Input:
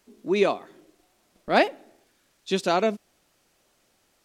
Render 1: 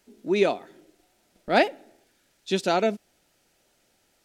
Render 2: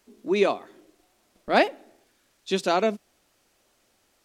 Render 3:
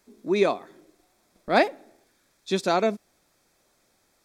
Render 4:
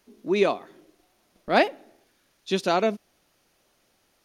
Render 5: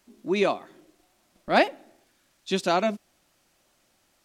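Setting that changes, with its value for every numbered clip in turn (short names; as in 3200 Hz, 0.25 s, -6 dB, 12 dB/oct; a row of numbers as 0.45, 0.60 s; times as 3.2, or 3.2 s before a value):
notch, frequency: 1100, 160, 2900, 7700, 440 Hz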